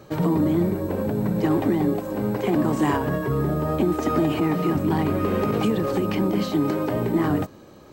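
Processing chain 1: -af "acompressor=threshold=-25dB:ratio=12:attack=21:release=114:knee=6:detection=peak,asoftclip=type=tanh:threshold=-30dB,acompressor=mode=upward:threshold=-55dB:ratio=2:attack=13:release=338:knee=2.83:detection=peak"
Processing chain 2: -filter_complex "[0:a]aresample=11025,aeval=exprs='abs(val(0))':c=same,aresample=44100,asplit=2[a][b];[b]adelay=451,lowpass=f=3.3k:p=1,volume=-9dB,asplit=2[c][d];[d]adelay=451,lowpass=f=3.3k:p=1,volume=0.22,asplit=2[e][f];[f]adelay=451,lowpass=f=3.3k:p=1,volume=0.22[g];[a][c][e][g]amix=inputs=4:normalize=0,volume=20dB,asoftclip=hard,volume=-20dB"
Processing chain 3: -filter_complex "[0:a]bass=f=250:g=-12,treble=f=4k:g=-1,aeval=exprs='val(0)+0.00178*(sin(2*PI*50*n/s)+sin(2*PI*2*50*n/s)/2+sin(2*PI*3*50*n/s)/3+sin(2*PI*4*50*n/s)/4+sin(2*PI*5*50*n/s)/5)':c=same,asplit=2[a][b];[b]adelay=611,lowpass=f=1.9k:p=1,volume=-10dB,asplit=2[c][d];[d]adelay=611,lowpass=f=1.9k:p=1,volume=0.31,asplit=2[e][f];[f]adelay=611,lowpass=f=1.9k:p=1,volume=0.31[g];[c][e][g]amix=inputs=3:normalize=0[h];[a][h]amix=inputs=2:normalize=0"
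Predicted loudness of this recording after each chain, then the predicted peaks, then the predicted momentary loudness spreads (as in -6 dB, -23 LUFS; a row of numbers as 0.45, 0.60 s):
-33.5, -32.0, -26.0 LUFS; -30.0, -20.0, -12.0 dBFS; 1, 1, 4 LU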